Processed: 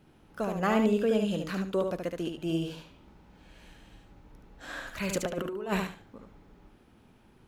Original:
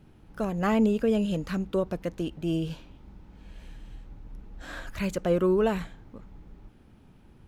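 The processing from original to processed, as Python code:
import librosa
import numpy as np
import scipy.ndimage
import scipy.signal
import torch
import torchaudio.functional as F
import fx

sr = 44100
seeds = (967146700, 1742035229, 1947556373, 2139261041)

y = fx.low_shelf(x, sr, hz=180.0, db=-11.0)
y = fx.over_compress(y, sr, threshold_db=-31.0, ratio=-0.5, at=(5.09, 5.8))
y = fx.echo_feedback(y, sr, ms=73, feedback_pct=21, wet_db=-5)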